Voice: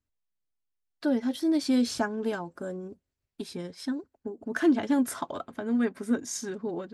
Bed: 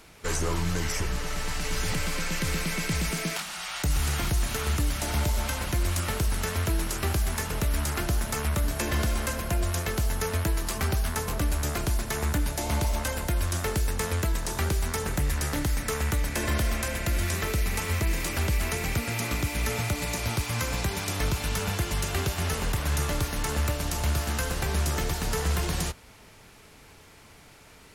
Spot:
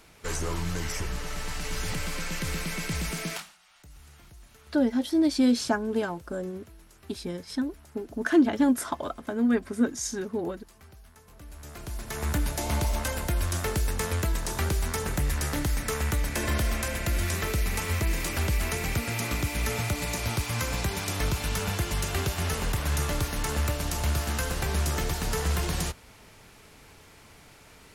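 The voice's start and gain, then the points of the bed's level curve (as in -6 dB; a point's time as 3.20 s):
3.70 s, +2.5 dB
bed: 3.37 s -3 dB
3.58 s -25 dB
11.22 s -25 dB
12.33 s -0.5 dB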